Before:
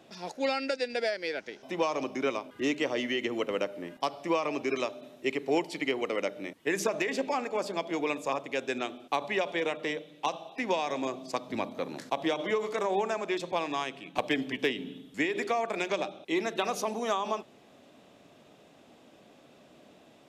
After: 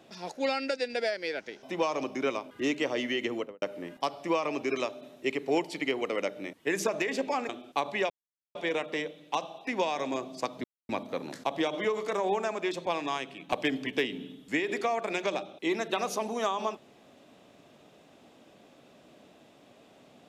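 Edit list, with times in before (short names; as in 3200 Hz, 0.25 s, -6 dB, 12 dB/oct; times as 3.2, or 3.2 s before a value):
3.3–3.62 studio fade out
7.49–8.85 cut
9.46 insert silence 0.45 s
11.55 insert silence 0.25 s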